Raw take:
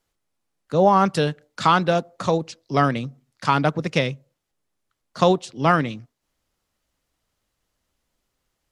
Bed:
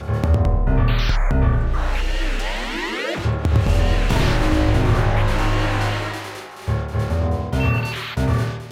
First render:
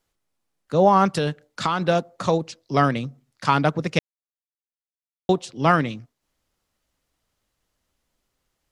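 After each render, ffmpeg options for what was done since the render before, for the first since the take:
-filter_complex "[0:a]asettb=1/sr,asplit=3[a][b][c];[a]atrim=end=1.154[d];[b]atrim=start=1.15:end=1.86,asetpts=PTS-STARTPTS,afade=t=in:d=0.004:c=qsin,afade=t=out:st=0.706:d=0.004:c=qsin,acompressor=threshold=-17dB:ratio=6:attack=3.2:release=140:knee=1:detection=peak[e];[c]atrim=start=1.856[f];[d][e]acrossfade=d=0.004:c1=hsin:c2=qsin[g];[g][f]acrossfade=d=0.004:c1=qsin:c2=hsin,asplit=3[h][i][j];[h]atrim=end=3.99,asetpts=PTS-STARTPTS,afade=t=out:st=3.986:d=0.004:c=hsin[k];[i]atrim=start=3.99:end=5.29,asetpts=PTS-STARTPTS,volume=0[l];[j]atrim=start=5.29,asetpts=PTS-STARTPTS,afade=t=in:d=0.004:c=hsin[m];[k][l][m]concat=n=3:v=0:a=1"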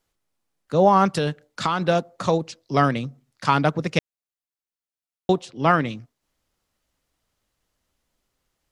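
-filter_complex "[0:a]asettb=1/sr,asplit=3[a][b][c];[a]atrim=end=5.434[d];[b]atrim=start=5.43:end=5.85,asetpts=PTS-STARTPTS,afade=t=in:d=0.004:c=qsin,afade=t=out:st=0.416:d=0.004:c=qsin,bass=f=250:g=-2,treble=f=4k:g=-6[e];[c]atrim=start=5.846[f];[d][e]acrossfade=d=0.004:c1=hsin:c2=qsin[g];[g][f]acrossfade=d=0.004:c1=qsin:c2=hsin"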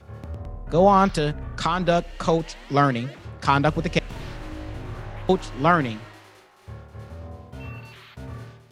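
-filter_complex "[1:a]volume=-18dB[a];[0:a][a]amix=inputs=2:normalize=0"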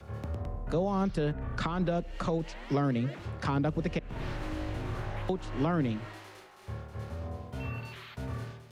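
-filter_complex "[0:a]acrossover=split=150|490|2800[a][b][c][d];[a]acompressor=threshold=-33dB:ratio=4[e];[b]acompressor=threshold=-24dB:ratio=4[f];[c]acompressor=threshold=-33dB:ratio=4[g];[d]acompressor=threshold=-52dB:ratio=4[h];[e][f][g][h]amix=inputs=4:normalize=0,alimiter=limit=-20dB:level=0:latency=1:release=264"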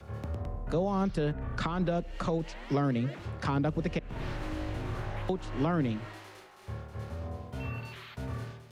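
-af anull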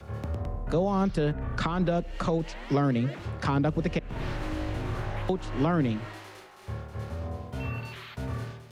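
-af "volume=3.5dB"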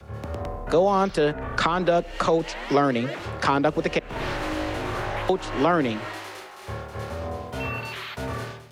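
-filter_complex "[0:a]acrossover=split=320[a][b];[a]alimiter=level_in=3.5dB:limit=-24dB:level=0:latency=1:release=303,volume=-3.5dB[c];[b]dynaudnorm=f=110:g=5:m=9dB[d];[c][d]amix=inputs=2:normalize=0"

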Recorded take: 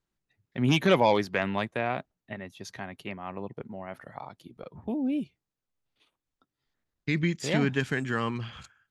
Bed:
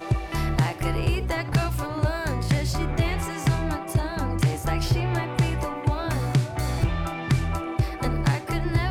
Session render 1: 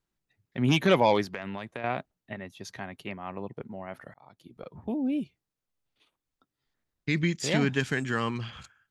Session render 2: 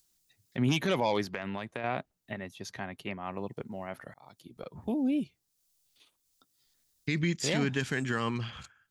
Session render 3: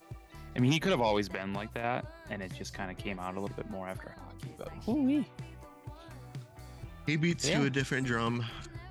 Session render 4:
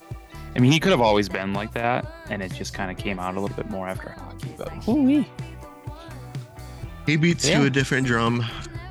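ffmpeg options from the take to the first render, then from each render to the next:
-filter_complex "[0:a]asettb=1/sr,asplit=3[a][b][c];[a]atrim=end=1.344[d];[b]atrim=start=1.34:end=1.84,asetpts=PTS-STARTPTS,afade=t=in:d=0.004:c=qsin,afade=t=out:st=0.496:d=0.004:c=qsin,acompressor=threshold=-32dB:ratio=6:attack=3.2:release=140:knee=1:detection=peak[e];[c]atrim=start=1.836[f];[d][e]acrossfade=d=0.004:c1=hsin:c2=qsin[g];[g][f]acrossfade=d=0.004:c1=qsin:c2=hsin,asettb=1/sr,asplit=3[h][i][j];[h]atrim=end=7.104[k];[i]atrim=start=7.1:end=8.51,asetpts=PTS-STARTPTS,afade=t=in:d=0.004:c=qsin,afade=t=out:st=1.406:d=0.004:c=qsin,equalizer=f=6.2k:w=0.66:g=4.5[l];[j]atrim=start=8.506[m];[k][l]acrossfade=d=0.004:c1=hsin:c2=qsin[n];[n][m]acrossfade=d=0.004:c1=qsin:c2=hsin,asplit=2[o][p];[o]atrim=end=4.14,asetpts=PTS-STARTPTS,afade=t=out:st=4.136:d=0.004:c=hsin[q];[p]atrim=start=4.14,asetpts=PTS-STARTPTS,afade=t=in:d=0.45[r];[q][r]concat=n=2:v=0:a=1"
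-filter_complex "[0:a]acrossover=split=4200[a][b];[a]alimiter=limit=-19dB:level=0:latency=1:release=66[c];[b]acompressor=mode=upward:threshold=-55dB:ratio=2.5[d];[c][d]amix=inputs=2:normalize=0"
-filter_complex "[1:a]volume=-22.5dB[a];[0:a][a]amix=inputs=2:normalize=0"
-af "volume=10dB"

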